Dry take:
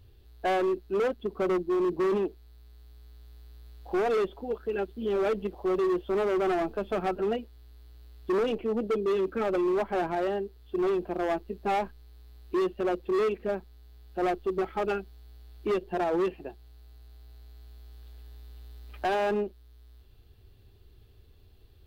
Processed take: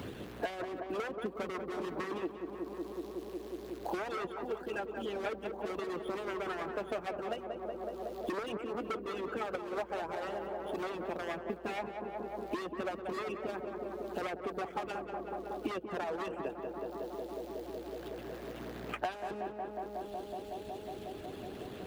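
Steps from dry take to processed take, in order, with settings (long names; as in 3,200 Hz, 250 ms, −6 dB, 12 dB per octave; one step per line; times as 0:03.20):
running median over 9 samples
high-pass filter 50 Hz
in parallel at −1 dB: brickwall limiter −28.5 dBFS, peak gain reduction 7.5 dB
on the sum: harmonic and percussive parts rebalanced harmonic −17 dB
on a send: tape delay 184 ms, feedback 85%, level −6.5 dB, low-pass 1,300 Hz
on the sum: multiband upward and downward compressor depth 100%
level −3.5 dB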